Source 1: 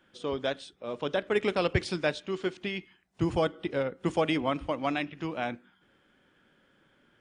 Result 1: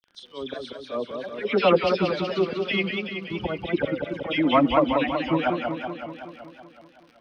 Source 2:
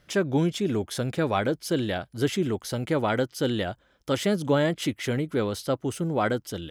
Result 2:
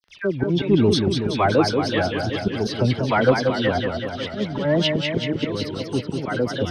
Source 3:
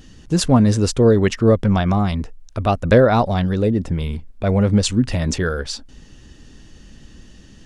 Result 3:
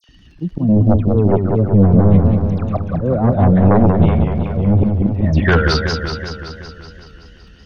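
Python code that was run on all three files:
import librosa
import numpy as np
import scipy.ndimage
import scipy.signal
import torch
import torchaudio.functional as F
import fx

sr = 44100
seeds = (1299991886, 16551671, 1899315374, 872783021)

p1 = fx.bin_expand(x, sr, power=1.5)
p2 = fx.env_lowpass_down(p1, sr, base_hz=340.0, full_db=-16.0)
p3 = fx.highpass(p2, sr, hz=71.0, slope=6)
p4 = fx.auto_swell(p3, sr, attack_ms=359.0)
p5 = fx.level_steps(p4, sr, step_db=13)
p6 = p4 + F.gain(torch.from_numpy(p5), -1.0).numpy()
p7 = fx.dispersion(p6, sr, late='lows', ms=90.0, hz=2000.0)
p8 = fx.fold_sine(p7, sr, drive_db=9, ceiling_db=-7.0)
p9 = fx.dmg_crackle(p8, sr, seeds[0], per_s=56.0, level_db=-37.0)
p10 = scipy.signal.savgol_filter(p9, 15, 4, mode='constant')
p11 = fx.echo_warbled(p10, sr, ms=188, feedback_pct=66, rate_hz=2.8, cents=141, wet_db=-5.0)
y = F.gain(torch.from_numpy(p11), -1.0).numpy()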